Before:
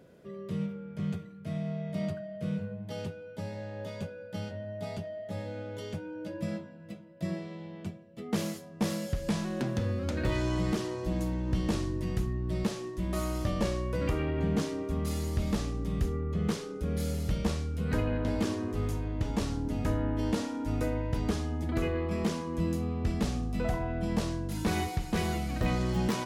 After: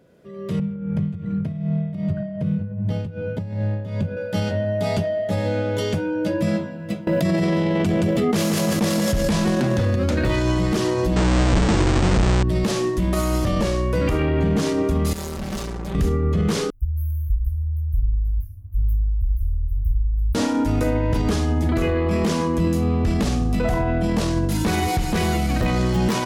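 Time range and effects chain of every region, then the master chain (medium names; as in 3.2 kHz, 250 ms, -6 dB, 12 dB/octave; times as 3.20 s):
0.59–4.17 s: tone controls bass +14 dB, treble -8 dB + compression 8:1, threshold -35 dBFS + tremolo 2.6 Hz, depth 64%
7.07–9.96 s: feedback delay 172 ms, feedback 31%, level -10 dB + level flattener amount 100%
11.16–12.43 s: square wave that keeps the level + brick-wall FIR low-pass 8.8 kHz
15.13–15.95 s: valve stage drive 44 dB, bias 0.7 + comb 5.2 ms, depth 51%
16.70–20.35 s: inverse Chebyshev band-stop 170–8100 Hz, stop band 50 dB + phase shifter stages 2, 1.1 Hz, lowest notch 240–4000 Hz
whole clip: peak limiter -29.5 dBFS; level rider gain up to 16.5 dB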